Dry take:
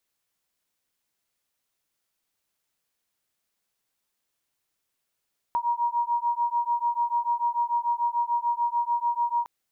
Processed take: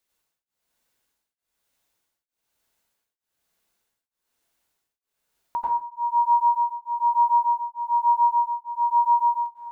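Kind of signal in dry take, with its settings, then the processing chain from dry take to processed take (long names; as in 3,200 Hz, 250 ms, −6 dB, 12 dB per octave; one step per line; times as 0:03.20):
two tones that beat 946 Hz, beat 6.8 Hz, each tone −26 dBFS 3.91 s
dense smooth reverb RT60 0.76 s, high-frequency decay 0.5×, pre-delay 80 ms, DRR −6 dB
tremolo along a rectified sine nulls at 1.1 Hz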